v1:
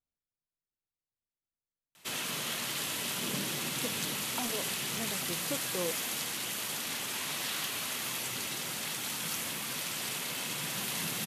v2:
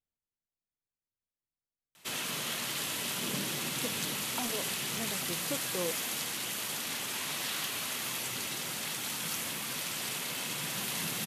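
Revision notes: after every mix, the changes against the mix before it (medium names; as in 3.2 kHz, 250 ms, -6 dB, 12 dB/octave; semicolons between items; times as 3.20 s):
no change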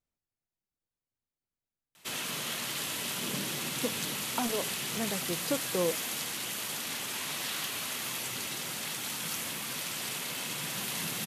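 speech +6.0 dB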